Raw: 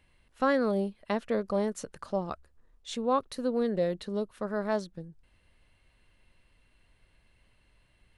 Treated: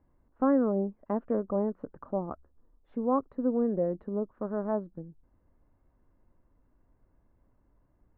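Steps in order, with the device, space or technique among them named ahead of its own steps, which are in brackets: under water (LPF 1200 Hz 24 dB/oct; bell 280 Hz +7.5 dB 0.55 oct); gain -1.5 dB

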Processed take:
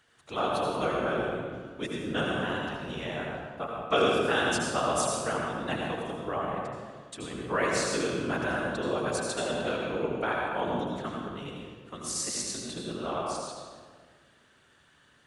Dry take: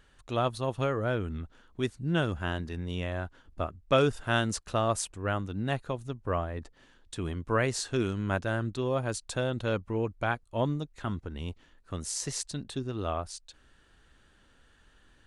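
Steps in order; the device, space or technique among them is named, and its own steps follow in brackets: whispering ghost (whisperiser; HPF 440 Hz 6 dB/oct; reverb RT60 1.6 s, pre-delay 73 ms, DRR -1.5 dB)

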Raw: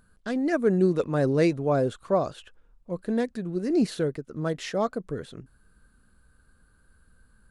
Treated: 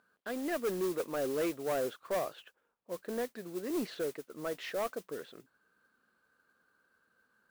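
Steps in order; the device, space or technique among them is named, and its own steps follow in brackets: carbon microphone (BPF 400–3500 Hz; soft clip -24 dBFS, distortion -11 dB; modulation noise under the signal 15 dB); gain -3.5 dB

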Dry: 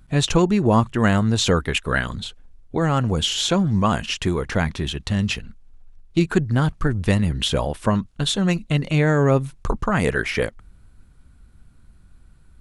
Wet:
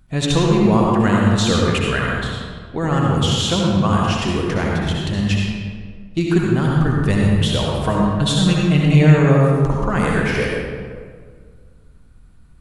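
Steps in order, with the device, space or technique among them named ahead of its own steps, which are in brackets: 7.83–9.07 comb 6.4 ms, depth 85%; stairwell (reverb RT60 1.8 s, pre-delay 60 ms, DRR -2.5 dB); gain -2 dB

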